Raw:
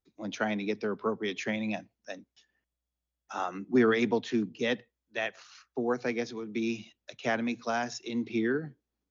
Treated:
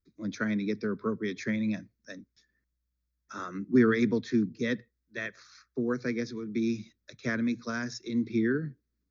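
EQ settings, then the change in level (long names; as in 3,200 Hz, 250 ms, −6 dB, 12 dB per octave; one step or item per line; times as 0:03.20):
low-shelf EQ 270 Hz +8 dB
phaser with its sweep stopped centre 2,900 Hz, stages 6
0.0 dB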